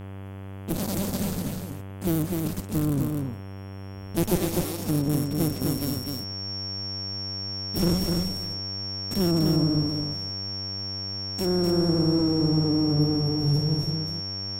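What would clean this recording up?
hum removal 97 Hz, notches 35
notch filter 5,500 Hz, Q 30
echo removal 252 ms −4 dB

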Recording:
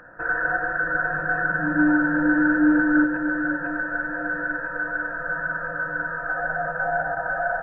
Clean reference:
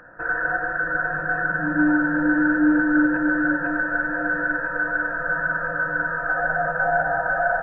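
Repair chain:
repair the gap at 0:07.15, 13 ms
level 0 dB, from 0:03.04 +3.5 dB

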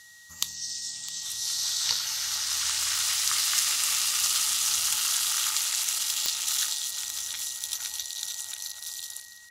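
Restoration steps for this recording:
click removal
notch filter 1,900 Hz, Q 30
echo removal 660 ms −14 dB

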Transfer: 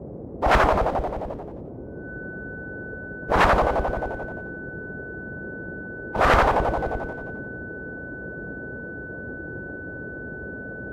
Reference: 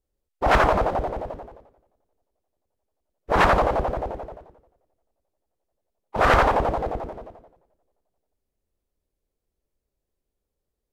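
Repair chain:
notch filter 1,500 Hz, Q 30
noise reduction from a noise print 30 dB

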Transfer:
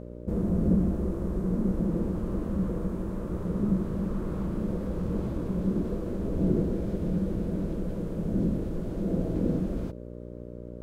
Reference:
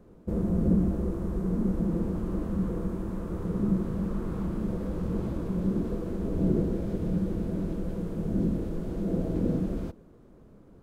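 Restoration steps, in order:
hum removal 59.7 Hz, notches 10

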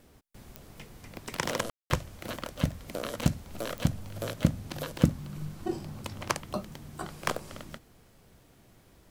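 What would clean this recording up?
clipped peaks rebuilt −8.5 dBFS
click removal
ambience match 0:01.70–0:01.90

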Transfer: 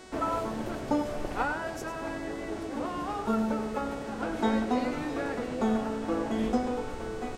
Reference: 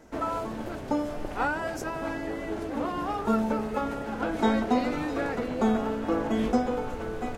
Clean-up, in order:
hum removal 372.7 Hz, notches 25
echo removal 100 ms −10 dB
level correction +3.5 dB, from 0:01.42

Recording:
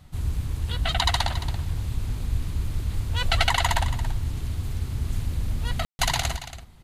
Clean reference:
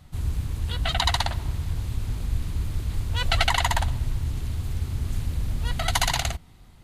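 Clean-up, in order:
ambience match 0:05.85–0:05.99
echo removal 280 ms −13 dB

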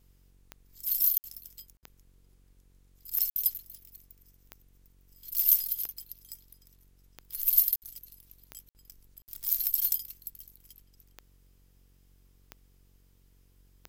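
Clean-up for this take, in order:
click removal
hum removal 46.3 Hz, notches 11
repair the gap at 0:01.18/0:01.77/0:03.30/0:07.76/0:08.69/0:09.22, 59 ms

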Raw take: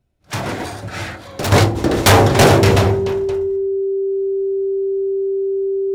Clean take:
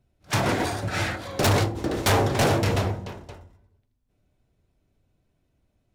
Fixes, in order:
notch filter 390 Hz, Q 30
level correction −10.5 dB, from 0:01.52

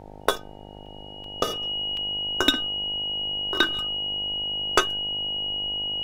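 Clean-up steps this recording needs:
hum removal 50.7 Hz, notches 18
notch filter 2,900 Hz, Q 30
repair the gap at 0:00.86/0:01.24/0:01.97, 2.8 ms
broadband denoise 30 dB, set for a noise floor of −42 dBFS

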